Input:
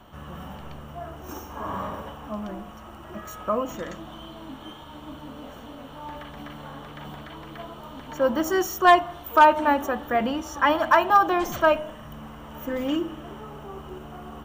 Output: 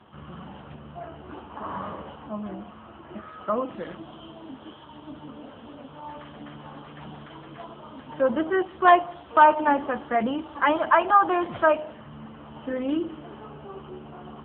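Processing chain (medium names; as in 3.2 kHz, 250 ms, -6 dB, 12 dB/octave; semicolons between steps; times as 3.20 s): peaking EQ 63 Hz +4 dB 0.5 oct; AMR-NB 6.7 kbps 8 kHz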